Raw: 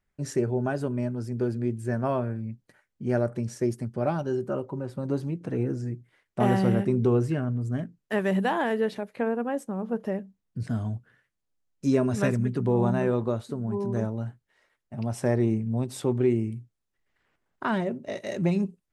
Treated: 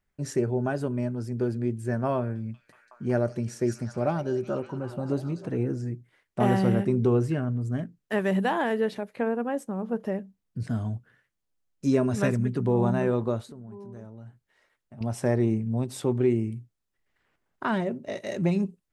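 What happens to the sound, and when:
2.17–5.47 s: repeats whose band climbs or falls 185 ms, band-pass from 5.6 kHz, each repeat -0.7 oct, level -3 dB
13.46–15.01 s: compression 2.5:1, threshold -46 dBFS

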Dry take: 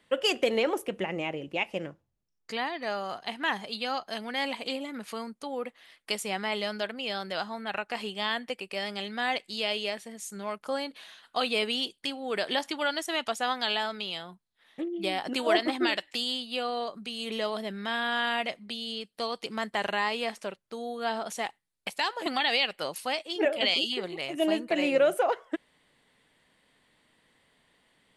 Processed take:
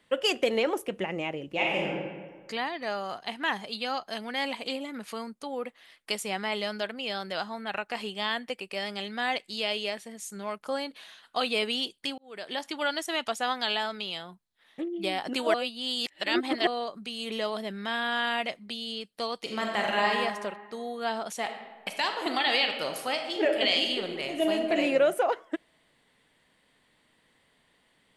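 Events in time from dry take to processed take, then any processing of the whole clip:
1.47–1.89 s: reverb throw, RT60 1.5 s, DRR -4 dB
12.18–12.85 s: fade in
15.54–16.67 s: reverse
19.42–20.09 s: reverb throw, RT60 1.6 s, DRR -0.5 dB
21.37–24.74 s: reverb throw, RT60 1.3 s, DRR 5 dB

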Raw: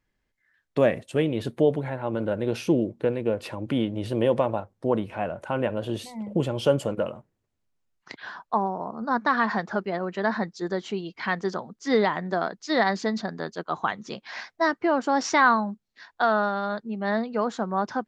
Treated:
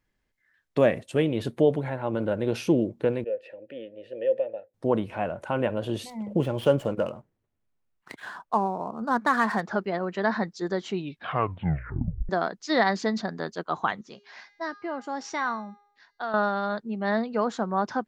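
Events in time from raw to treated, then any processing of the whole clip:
3.24–4.74 s: vowel filter e
6.10–9.61 s: median filter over 9 samples
10.89 s: tape stop 1.40 s
14.01–16.34 s: feedback comb 410 Hz, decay 0.72 s, mix 70%

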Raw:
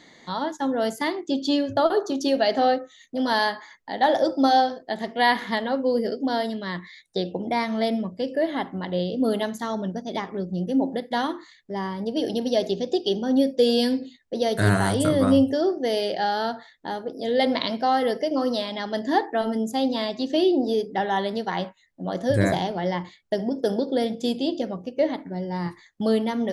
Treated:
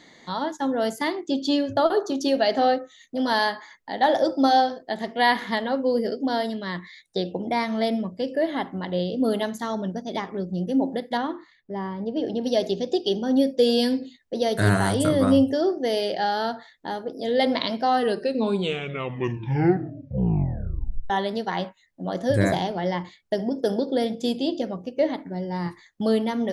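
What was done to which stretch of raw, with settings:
11.17–12.44 s: tape spacing loss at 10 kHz 24 dB
17.86 s: tape stop 3.24 s

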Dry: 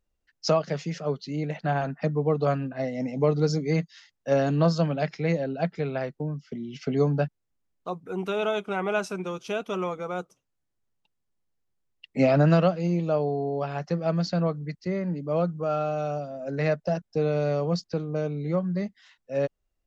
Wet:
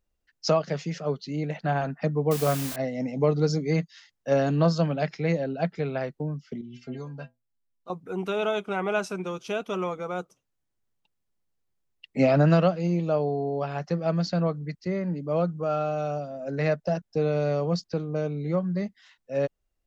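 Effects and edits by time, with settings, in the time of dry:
2.31–2.76 s: word length cut 6-bit, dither triangular
6.61–7.90 s: inharmonic resonator 120 Hz, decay 0.23 s, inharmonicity 0.008

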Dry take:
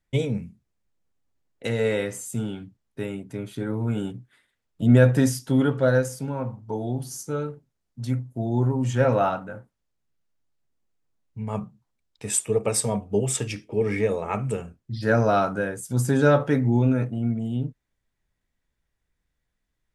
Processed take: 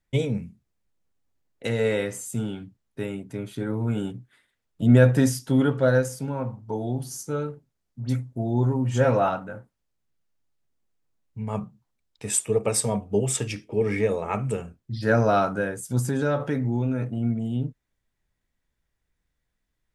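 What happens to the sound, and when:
8.00–9.28 s: phase dispersion highs, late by 58 ms, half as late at 2.5 kHz
15.99–17.17 s: compression 2:1, threshold -24 dBFS

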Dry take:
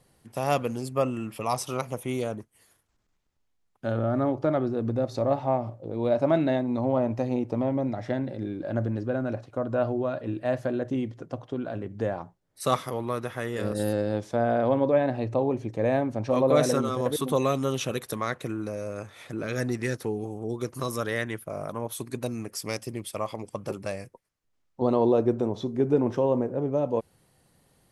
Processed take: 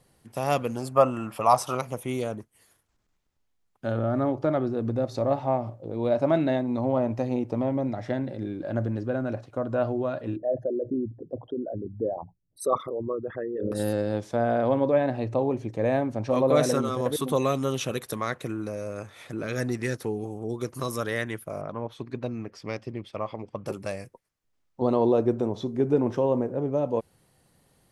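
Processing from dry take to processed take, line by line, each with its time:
0.76–1.75 s: high-order bell 940 Hz +9 dB
10.36–13.72 s: resonances exaggerated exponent 3
21.61–23.66 s: distance through air 230 m

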